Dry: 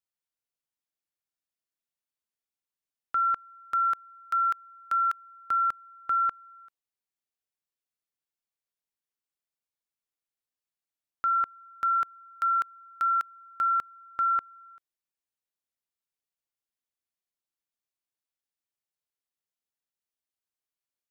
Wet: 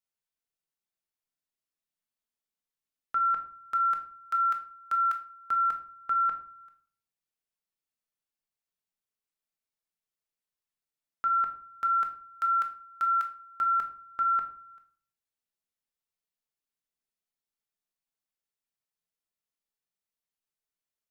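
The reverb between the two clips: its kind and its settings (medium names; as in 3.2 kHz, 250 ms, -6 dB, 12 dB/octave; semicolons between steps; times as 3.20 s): simulated room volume 480 m³, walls furnished, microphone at 1.5 m; trim -3 dB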